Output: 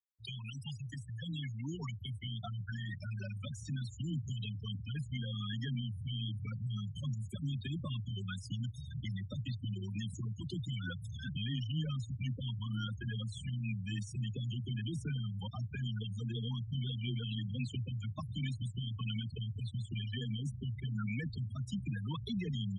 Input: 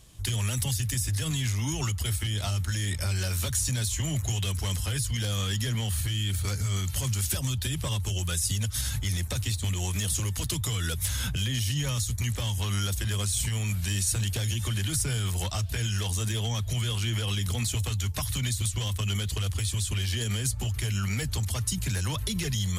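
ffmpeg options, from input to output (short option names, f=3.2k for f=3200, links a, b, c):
-filter_complex "[0:a]lowshelf=f=320:g=-10.5,asplit=3[a][b][c];[b]adelay=407,afreqshift=110,volume=-23dB[d];[c]adelay=814,afreqshift=220,volume=-31.9dB[e];[a][d][e]amix=inputs=3:normalize=0,asubboost=boost=4:cutoff=250,afreqshift=13,afftfilt=real='re*gte(hypot(re,im),0.0562)':imag='im*gte(hypot(re,im),0.0562)':win_size=1024:overlap=0.75,areverse,acompressor=mode=upward:threshold=-29dB:ratio=2.5,areverse,highpass=190,lowpass=2.5k,volume=-2.5dB"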